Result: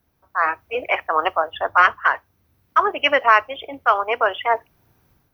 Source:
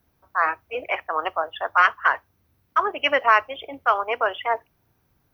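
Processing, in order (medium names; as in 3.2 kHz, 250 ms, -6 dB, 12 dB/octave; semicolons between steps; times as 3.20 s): 1.52–1.99 s: bass shelf 470 Hz +10 dB; level rider gain up to 9.5 dB; trim -1 dB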